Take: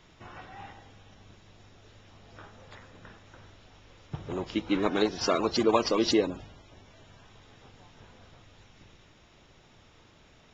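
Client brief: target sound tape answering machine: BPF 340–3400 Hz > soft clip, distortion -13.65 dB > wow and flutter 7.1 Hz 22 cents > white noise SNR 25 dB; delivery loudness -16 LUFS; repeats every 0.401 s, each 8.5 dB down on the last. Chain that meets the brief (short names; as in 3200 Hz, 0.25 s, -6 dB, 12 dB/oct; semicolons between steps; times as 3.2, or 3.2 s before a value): BPF 340–3400 Hz; feedback echo 0.401 s, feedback 38%, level -8.5 dB; soft clip -20.5 dBFS; wow and flutter 7.1 Hz 22 cents; white noise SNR 25 dB; gain +16.5 dB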